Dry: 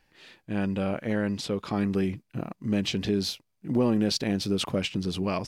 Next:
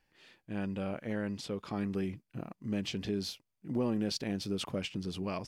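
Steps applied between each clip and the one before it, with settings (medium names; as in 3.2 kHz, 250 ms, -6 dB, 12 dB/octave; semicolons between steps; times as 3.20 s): band-stop 3.9 kHz, Q 21; trim -8 dB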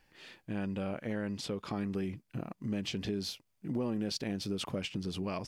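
compression 2:1, threshold -45 dBFS, peak gain reduction 10 dB; trim +7 dB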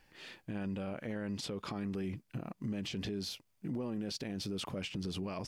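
peak limiter -32.5 dBFS, peak gain reduction 9 dB; trim +2 dB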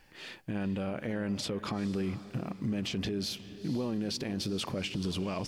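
echo that smears into a reverb 456 ms, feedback 40%, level -14 dB; trim +5 dB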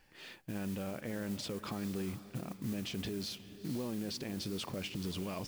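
modulation noise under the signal 16 dB; trim -5.5 dB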